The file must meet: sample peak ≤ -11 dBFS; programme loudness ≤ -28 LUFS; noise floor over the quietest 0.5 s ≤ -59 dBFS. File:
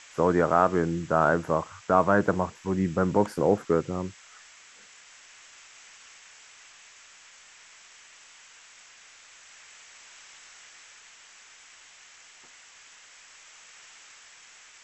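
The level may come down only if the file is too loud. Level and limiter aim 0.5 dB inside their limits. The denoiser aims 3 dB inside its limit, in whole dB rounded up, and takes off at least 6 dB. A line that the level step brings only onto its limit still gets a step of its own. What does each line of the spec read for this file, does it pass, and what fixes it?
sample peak -7.0 dBFS: fail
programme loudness -25.0 LUFS: fail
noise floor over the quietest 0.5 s -52 dBFS: fail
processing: denoiser 7 dB, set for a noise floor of -52 dBFS; gain -3.5 dB; limiter -11.5 dBFS

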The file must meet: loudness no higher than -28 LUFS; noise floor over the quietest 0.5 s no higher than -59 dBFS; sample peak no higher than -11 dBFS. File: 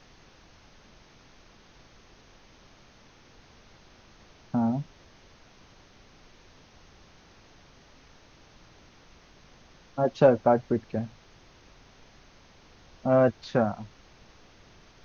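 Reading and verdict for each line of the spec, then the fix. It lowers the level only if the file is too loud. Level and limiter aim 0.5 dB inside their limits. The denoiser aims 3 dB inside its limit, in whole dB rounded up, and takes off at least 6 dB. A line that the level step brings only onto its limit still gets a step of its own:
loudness -26.0 LUFS: fail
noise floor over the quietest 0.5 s -56 dBFS: fail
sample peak -6.5 dBFS: fail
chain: denoiser 6 dB, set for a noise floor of -56 dBFS; gain -2.5 dB; limiter -11.5 dBFS

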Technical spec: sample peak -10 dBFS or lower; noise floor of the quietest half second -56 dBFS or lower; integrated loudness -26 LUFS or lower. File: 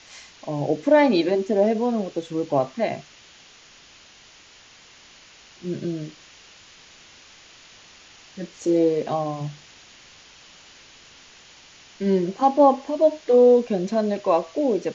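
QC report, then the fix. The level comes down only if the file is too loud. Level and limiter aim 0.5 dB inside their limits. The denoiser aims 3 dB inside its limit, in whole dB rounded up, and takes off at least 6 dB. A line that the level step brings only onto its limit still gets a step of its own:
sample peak -6.0 dBFS: fail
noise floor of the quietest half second -50 dBFS: fail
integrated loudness -21.5 LUFS: fail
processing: denoiser 6 dB, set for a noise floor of -50 dBFS; gain -5 dB

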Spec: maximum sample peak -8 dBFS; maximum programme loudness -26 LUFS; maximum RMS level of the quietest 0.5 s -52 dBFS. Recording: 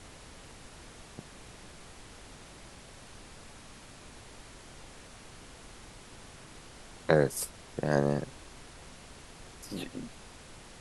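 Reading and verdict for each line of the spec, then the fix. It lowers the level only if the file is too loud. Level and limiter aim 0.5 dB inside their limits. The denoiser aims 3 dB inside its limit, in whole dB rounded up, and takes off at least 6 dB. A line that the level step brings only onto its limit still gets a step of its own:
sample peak -6.5 dBFS: fail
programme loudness -31.5 LUFS: OK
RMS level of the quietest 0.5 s -50 dBFS: fail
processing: denoiser 6 dB, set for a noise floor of -50 dBFS; limiter -8.5 dBFS

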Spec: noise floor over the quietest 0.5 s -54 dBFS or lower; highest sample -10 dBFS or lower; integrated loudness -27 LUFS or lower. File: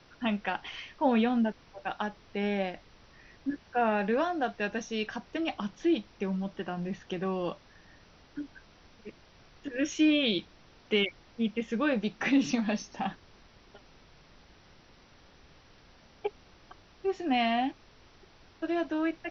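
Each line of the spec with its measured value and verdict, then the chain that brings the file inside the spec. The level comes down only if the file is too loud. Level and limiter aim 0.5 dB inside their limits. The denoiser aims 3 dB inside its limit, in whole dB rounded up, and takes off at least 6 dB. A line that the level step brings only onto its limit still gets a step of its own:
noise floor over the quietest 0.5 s -58 dBFS: OK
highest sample -14.0 dBFS: OK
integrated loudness -31.0 LUFS: OK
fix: none

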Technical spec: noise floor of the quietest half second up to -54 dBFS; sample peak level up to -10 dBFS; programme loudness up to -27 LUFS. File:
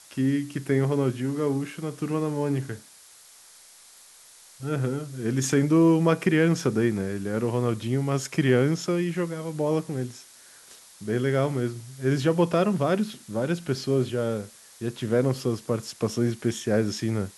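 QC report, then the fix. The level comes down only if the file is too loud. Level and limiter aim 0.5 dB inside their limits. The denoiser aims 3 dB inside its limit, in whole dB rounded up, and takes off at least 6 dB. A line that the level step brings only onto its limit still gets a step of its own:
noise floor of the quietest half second -52 dBFS: fail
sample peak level -8.0 dBFS: fail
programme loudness -25.5 LUFS: fail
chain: denoiser 6 dB, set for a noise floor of -52 dBFS; gain -2 dB; limiter -10.5 dBFS

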